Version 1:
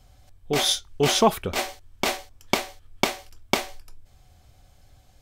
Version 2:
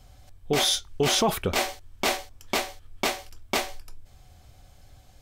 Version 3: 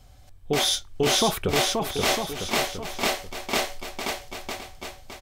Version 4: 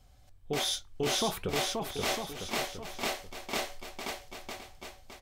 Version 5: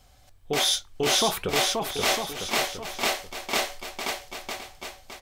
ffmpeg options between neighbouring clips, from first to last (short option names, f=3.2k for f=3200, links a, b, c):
-af "alimiter=limit=-16.5dB:level=0:latency=1:release=15,volume=2.5dB"
-af "aecho=1:1:530|954|1293|1565|1782:0.631|0.398|0.251|0.158|0.1"
-af "flanger=delay=3.7:depth=5.6:regen=-83:speed=1.2:shape=sinusoidal,acontrast=31,volume=-9dB"
-af "lowshelf=f=360:g=-7.5,volume=8.5dB"